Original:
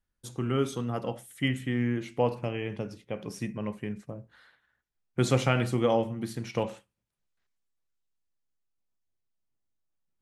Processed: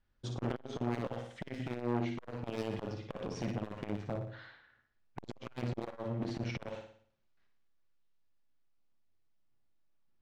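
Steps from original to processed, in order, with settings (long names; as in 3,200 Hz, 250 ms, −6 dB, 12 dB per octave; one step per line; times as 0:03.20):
low-pass filter 5,700 Hz 24 dB per octave
high-shelf EQ 4,400 Hz −7.5 dB
downward compressor 16 to 1, threshold −31 dBFS, peak gain reduction 14 dB
wave folding −30.5 dBFS
speech leveller within 4 dB 2 s
flutter between parallel walls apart 10 metres, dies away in 0.54 s
on a send at −13 dB: convolution reverb RT60 0.40 s, pre-delay 3 ms
on the sum: saturating transformer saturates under 570 Hz
level +4 dB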